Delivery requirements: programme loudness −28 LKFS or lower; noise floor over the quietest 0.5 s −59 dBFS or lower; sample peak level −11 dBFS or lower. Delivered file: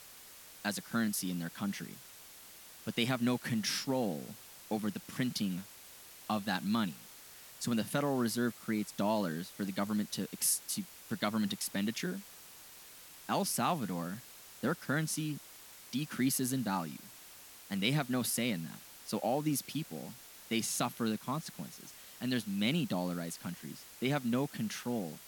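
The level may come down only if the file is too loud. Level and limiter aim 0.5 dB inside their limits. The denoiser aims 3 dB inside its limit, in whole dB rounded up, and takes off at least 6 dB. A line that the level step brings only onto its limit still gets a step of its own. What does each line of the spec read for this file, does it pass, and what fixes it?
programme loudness −35.0 LKFS: in spec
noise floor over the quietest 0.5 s −54 dBFS: out of spec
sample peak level −16.5 dBFS: in spec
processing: broadband denoise 8 dB, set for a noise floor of −54 dBFS

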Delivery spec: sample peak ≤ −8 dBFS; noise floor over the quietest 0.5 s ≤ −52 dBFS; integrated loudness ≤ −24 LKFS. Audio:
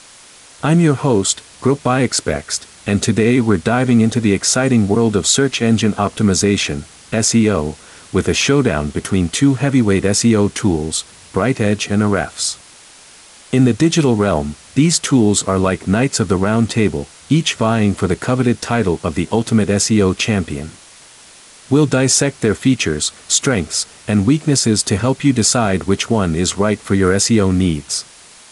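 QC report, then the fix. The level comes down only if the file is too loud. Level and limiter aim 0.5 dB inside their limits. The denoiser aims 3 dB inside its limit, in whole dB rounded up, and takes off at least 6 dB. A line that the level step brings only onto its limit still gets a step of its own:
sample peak −2.5 dBFS: out of spec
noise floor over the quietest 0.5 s −42 dBFS: out of spec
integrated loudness −15.5 LKFS: out of spec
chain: broadband denoise 6 dB, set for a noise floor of −42 dBFS
level −9 dB

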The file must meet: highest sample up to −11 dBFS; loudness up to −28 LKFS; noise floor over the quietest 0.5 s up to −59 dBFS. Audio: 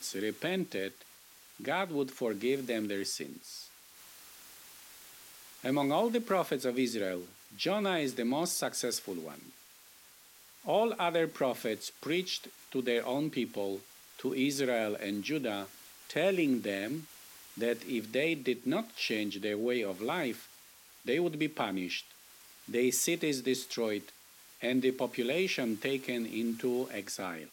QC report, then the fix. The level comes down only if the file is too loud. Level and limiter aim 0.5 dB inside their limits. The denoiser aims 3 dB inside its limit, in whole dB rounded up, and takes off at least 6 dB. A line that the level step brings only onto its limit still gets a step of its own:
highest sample −16.5 dBFS: in spec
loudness −33.5 LKFS: in spec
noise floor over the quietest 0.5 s −58 dBFS: out of spec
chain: broadband denoise 6 dB, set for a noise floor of −58 dBFS

